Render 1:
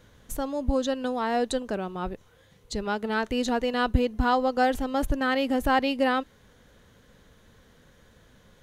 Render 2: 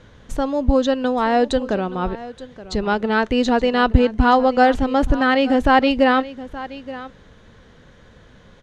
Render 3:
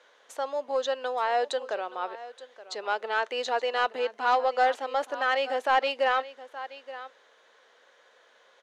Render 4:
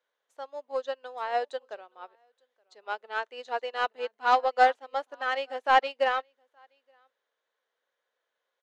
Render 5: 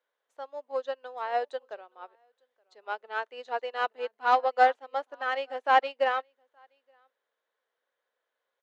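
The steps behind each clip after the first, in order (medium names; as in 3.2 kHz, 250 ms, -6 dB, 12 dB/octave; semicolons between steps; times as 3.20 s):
distance through air 100 m; delay 873 ms -16.5 dB; trim +9 dB
high-pass 510 Hz 24 dB/octave; saturation -7.5 dBFS, distortion -19 dB; trim -6 dB
upward expansion 2.5:1, over -38 dBFS; trim +4.5 dB
high-pass 200 Hz 12 dB/octave; treble shelf 4.1 kHz -8 dB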